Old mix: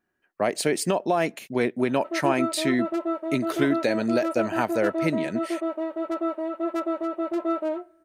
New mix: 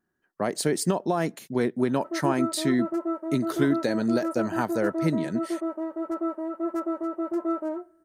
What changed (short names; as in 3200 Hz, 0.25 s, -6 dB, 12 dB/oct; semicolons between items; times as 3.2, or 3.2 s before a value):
background: add bell 3700 Hz -13.5 dB 0.81 oct; master: add fifteen-band EQ 160 Hz +4 dB, 630 Hz -5 dB, 2500 Hz -11 dB